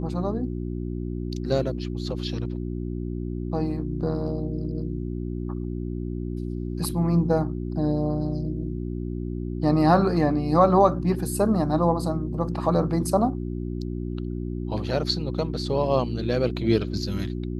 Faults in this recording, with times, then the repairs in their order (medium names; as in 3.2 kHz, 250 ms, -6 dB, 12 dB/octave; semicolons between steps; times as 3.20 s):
hum 60 Hz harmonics 6 -30 dBFS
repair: de-hum 60 Hz, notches 6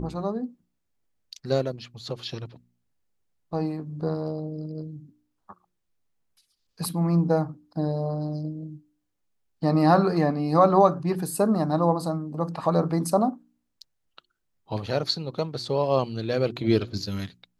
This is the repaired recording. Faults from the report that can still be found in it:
nothing left